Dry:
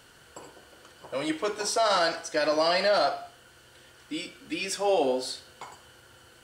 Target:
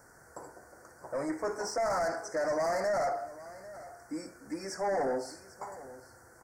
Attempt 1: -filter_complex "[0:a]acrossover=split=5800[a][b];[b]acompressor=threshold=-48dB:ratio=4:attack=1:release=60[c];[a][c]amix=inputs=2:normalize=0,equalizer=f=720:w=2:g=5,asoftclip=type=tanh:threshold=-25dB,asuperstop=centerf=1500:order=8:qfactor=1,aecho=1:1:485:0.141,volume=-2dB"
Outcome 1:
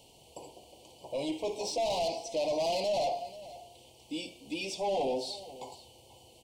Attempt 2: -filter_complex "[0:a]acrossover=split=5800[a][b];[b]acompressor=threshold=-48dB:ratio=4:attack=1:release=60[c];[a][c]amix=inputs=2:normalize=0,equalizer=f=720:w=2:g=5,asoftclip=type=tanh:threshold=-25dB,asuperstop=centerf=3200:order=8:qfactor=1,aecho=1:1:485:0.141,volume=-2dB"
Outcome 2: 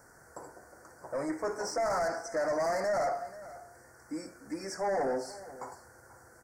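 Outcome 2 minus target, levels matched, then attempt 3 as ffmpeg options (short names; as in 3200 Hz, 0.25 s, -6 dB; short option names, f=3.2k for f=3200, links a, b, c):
echo 0.312 s early
-filter_complex "[0:a]acrossover=split=5800[a][b];[b]acompressor=threshold=-48dB:ratio=4:attack=1:release=60[c];[a][c]amix=inputs=2:normalize=0,equalizer=f=720:w=2:g=5,asoftclip=type=tanh:threshold=-25dB,asuperstop=centerf=3200:order=8:qfactor=1,aecho=1:1:797:0.141,volume=-2dB"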